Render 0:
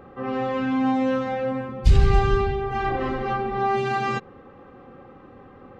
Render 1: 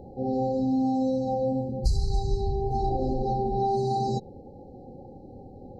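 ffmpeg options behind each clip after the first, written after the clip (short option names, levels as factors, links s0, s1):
-filter_complex "[0:a]afftfilt=real='re*(1-between(b*sr/4096,910,3900))':imag='im*(1-between(b*sr/4096,910,3900))':win_size=4096:overlap=0.75,lowshelf=f=140:g=8,acrossover=split=1400[s0][s1];[s0]acompressor=threshold=0.0794:ratio=6[s2];[s2][s1]amix=inputs=2:normalize=0"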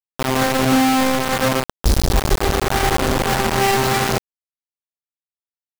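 -af "acrusher=bits=3:mix=0:aa=0.000001,volume=2.24"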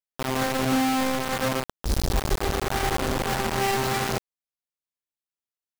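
-af "alimiter=limit=0.168:level=0:latency=1:release=141,volume=0.794"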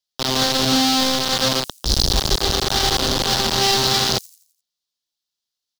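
-filter_complex "[0:a]acrossover=split=250|5500[s0][s1][s2];[s1]aexciter=amount=6.1:drive=8:freq=3400[s3];[s2]aecho=1:1:85|170|255|340|425:0.447|0.197|0.0865|0.0381|0.0167[s4];[s0][s3][s4]amix=inputs=3:normalize=0,volume=1.5"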